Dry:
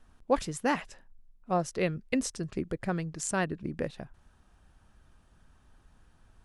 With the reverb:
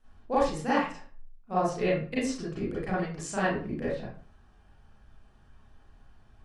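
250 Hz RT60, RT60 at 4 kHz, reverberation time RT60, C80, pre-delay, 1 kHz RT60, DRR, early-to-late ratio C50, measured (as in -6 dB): 0.45 s, 0.30 s, 0.45 s, 6.5 dB, 31 ms, 0.45 s, -10.5 dB, 0.0 dB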